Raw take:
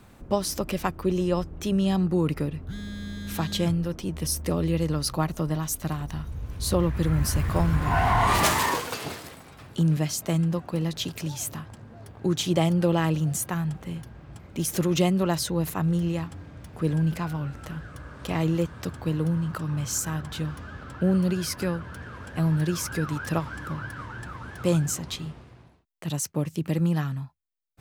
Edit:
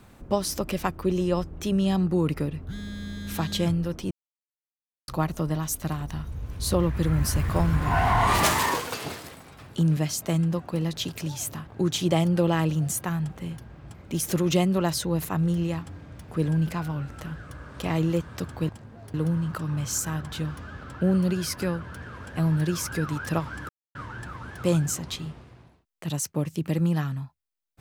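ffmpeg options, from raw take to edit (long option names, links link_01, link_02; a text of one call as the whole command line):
ffmpeg -i in.wav -filter_complex "[0:a]asplit=8[link_01][link_02][link_03][link_04][link_05][link_06][link_07][link_08];[link_01]atrim=end=4.11,asetpts=PTS-STARTPTS,afade=type=out:start_time=4.106:duration=0.004:curve=hsin[link_09];[link_02]atrim=start=4.11:end=5.08,asetpts=PTS-STARTPTS,volume=0[link_10];[link_03]atrim=start=5.08:end=11.672,asetpts=PTS-STARTPTS,afade=type=in:duration=0.004:curve=hsin[link_11];[link_04]atrim=start=12.118:end=19.142[link_12];[link_05]atrim=start=11.668:end=12.122[link_13];[link_06]atrim=start=19.138:end=23.69,asetpts=PTS-STARTPTS,afade=type=out:start_time=4.548:duration=0.004:curve=hsin[link_14];[link_07]atrim=start=23.69:end=23.95,asetpts=PTS-STARTPTS,volume=0[link_15];[link_08]atrim=start=23.95,asetpts=PTS-STARTPTS,afade=type=in:duration=0.004:curve=hsin[link_16];[link_09][link_10][link_11]concat=n=3:v=0:a=1[link_17];[link_17][link_12]acrossfade=duration=0.004:curve1=hsin:curve2=hsin[link_18];[link_18][link_13]acrossfade=duration=0.004:curve1=hsin:curve2=hsin[link_19];[link_14][link_15][link_16]concat=n=3:v=0:a=1[link_20];[link_19][link_20]acrossfade=duration=0.004:curve1=hsin:curve2=hsin" out.wav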